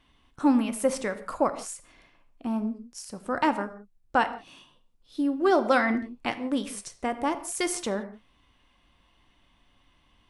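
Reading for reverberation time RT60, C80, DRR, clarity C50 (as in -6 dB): no single decay rate, 15.5 dB, 9.5 dB, 13.5 dB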